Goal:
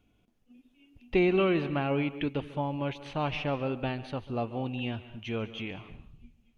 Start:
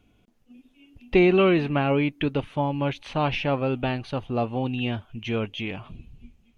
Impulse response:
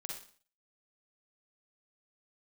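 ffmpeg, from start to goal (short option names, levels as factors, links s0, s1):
-filter_complex "[0:a]asplit=2[s0][s1];[1:a]atrim=start_sample=2205,adelay=142[s2];[s1][s2]afir=irnorm=-1:irlink=0,volume=0.251[s3];[s0][s3]amix=inputs=2:normalize=0,volume=0.473"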